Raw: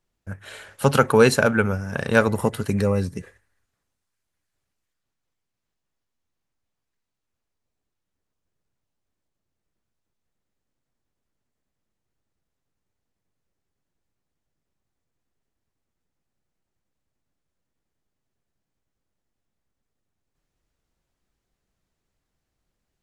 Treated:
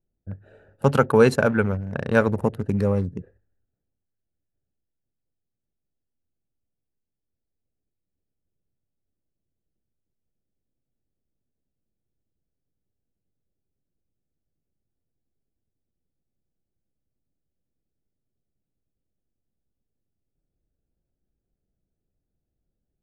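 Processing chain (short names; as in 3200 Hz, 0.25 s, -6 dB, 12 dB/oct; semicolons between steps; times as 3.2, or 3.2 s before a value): Wiener smoothing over 41 samples; high shelf 2100 Hz -9 dB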